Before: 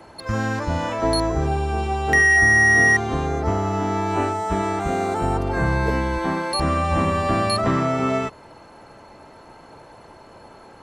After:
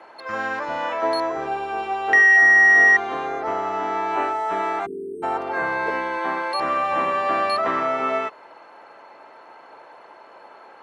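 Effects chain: weighting filter A; spectral delete 4.86–5.23, 480–8300 Hz; tone controls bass -10 dB, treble -15 dB; gain +2 dB

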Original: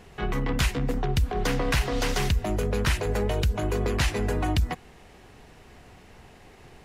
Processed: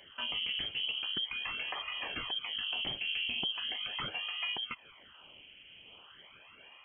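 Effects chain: HPF 110 Hz 6 dB/oct; low shelf 500 Hz -3.5 dB; compressor, threshold -32 dBFS, peak gain reduction 9.5 dB; phaser stages 12, 0.4 Hz, lowest notch 160–2100 Hz; inverted band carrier 3200 Hz

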